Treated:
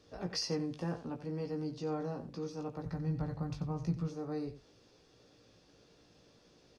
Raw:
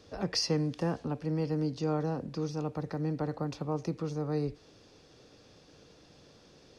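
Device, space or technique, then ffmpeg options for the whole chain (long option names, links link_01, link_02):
slapback doubling: -filter_complex "[0:a]asplit=3[link_01][link_02][link_03];[link_02]adelay=17,volume=-4.5dB[link_04];[link_03]adelay=90,volume=-12dB[link_05];[link_01][link_04][link_05]amix=inputs=3:normalize=0,asplit=3[link_06][link_07][link_08];[link_06]afade=type=out:start_time=2.84:duration=0.02[link_09];[link_07]asubboost=boost=11:cutoff=120,afade=type=in:start_time=2.84:duration=0.02,afade=type=out:start_time=4.07:duration=0.02[link_10];[link_08]afade=type=in:start_time=4.07:duration=0.02[link_11];[link_09][link_10][link_11]amix=inputs=3:normalize=0,volume=-7.5dB"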